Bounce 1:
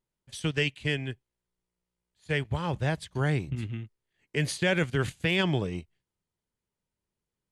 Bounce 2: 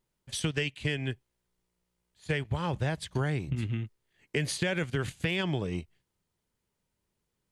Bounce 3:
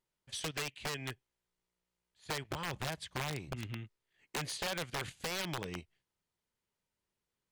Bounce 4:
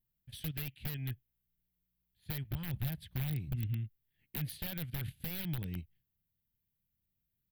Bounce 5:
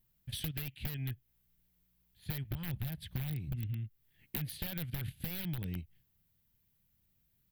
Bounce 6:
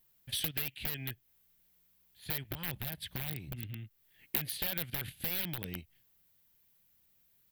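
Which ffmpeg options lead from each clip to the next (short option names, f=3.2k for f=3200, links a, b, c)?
-af "acompressor=threshold=-33dB:ratio=6,volume=6dB"
-filter_complex "[0:a]aeval=exprs='(mod(13.3*val(0)+1,2)-1)/13.3':c=same,asplit=2[a][b];[b]highpass=f=720:p=1,volume=4dB,asoftclip=type=tanh:threshold=-22dB[c];[a][c]amix=inputs=2:normalize=0,lowpass=f=6.7k:p=1,volume=-6dB,volume=-5.5dB"
-af "firequalizer=gain_entry='entry(120,0);entry(410,-20);entry(760,-21);entry(1100,-27);entry(1600,-18);entry(3600,-15);entry(6700,-29);entry(13000,3)':delay=0.05:min_phase=1,volume=8.5dB"
-af "acompressor=threshold=-45dB:ratio=6,volume=9.5dB"
-af "bass=f=250:g=-13,treble=f=4k:g=1,volume=6dB"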